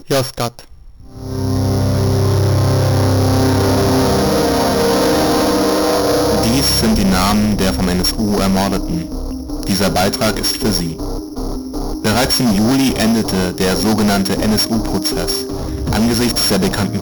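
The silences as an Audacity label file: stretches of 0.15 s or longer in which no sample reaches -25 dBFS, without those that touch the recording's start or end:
0.600000	1.160000	silence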